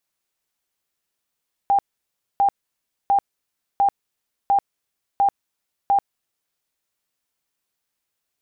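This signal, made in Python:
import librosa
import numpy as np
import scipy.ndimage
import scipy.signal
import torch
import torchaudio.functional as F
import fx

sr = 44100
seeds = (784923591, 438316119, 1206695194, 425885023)

y = fx.tone_burst(sr, hz=798.0, cycles=70, every_s=0.7, bursts=7, level_db=-13.5)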